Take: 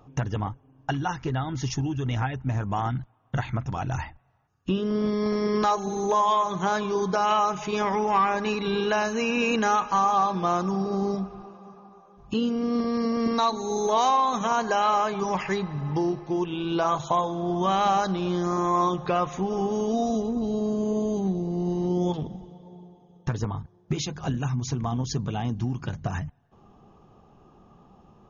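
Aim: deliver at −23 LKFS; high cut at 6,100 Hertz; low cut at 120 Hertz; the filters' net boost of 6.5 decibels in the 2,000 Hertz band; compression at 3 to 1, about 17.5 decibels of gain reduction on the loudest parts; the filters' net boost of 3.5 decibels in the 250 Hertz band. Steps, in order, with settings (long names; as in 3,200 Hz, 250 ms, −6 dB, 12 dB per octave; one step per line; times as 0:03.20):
high-pass filter 120 Hz
low-pass filter 6,100 Hz
parametric band 250 Hz +5 dB
parametric band 2,000 Hz +9 dB
downward compressor 3 to 1, threshold −41 dBFS
level +16 dB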